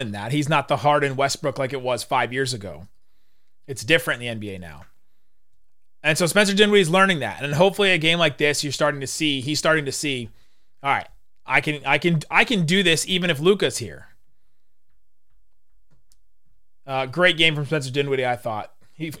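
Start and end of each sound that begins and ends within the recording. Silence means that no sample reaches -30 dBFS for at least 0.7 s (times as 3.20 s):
3.70–4.71 s
6.04–13.98 s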